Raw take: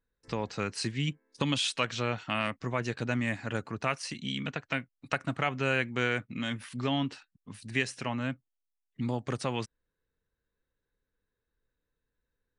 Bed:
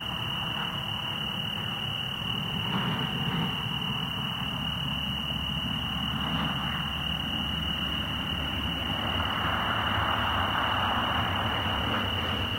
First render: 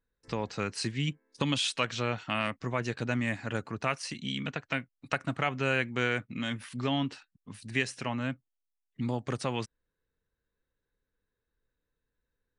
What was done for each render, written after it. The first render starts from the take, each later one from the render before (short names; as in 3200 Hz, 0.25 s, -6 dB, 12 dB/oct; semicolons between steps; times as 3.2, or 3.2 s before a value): nothing audible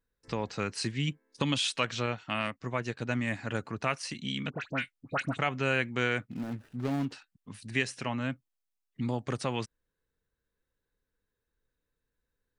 2.06–3.31 upward expander, over -40 dBFS; 4.5–5.39 dispersion highs, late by 81 ms, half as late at 1600 Hz; 6.31–7.12 median filter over 41 samples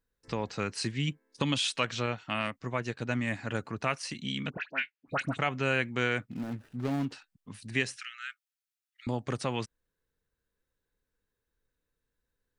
4.57–5.08 speaker cabinet 480–4700 Hz, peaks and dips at 490 Hz -7 dB, 760 Hz -4 dB, 1200 Hz -6 dB, 1700 Hz +5 dB, 2600 Hz +5 dB, 3800 Hz -6 dB; 7.96–9.07 brick-wall FIR high-pass 1200 Hz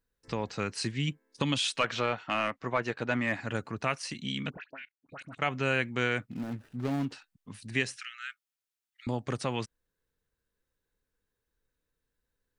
1.8–3.41 overdrive pedal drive 15 dB, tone 1400 Hz, clips at -12 dBFS; 4.56–5.42 level quantiser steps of 22 dB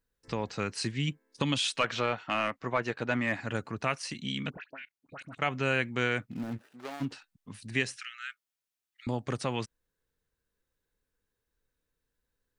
6.57–7 HPF 290 Hz -> 830 Hz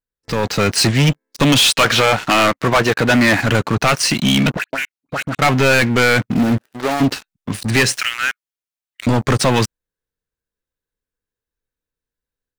sample leveller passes 5; AGC gain up to 5 dB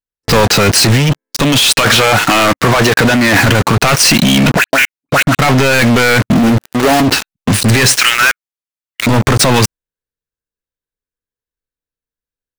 negative-ratio compressor -18 dBFS, ratio -0.5; sample leveller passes 5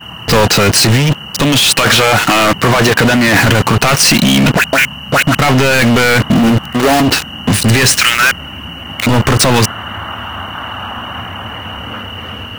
add bed +3.5 dB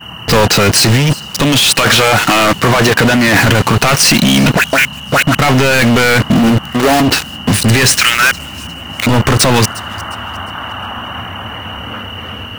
thin delay 0.356 s, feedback 37%, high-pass 4300 Hz, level -17 dB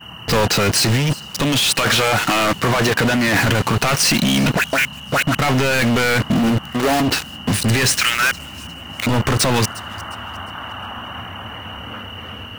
gain -7 dB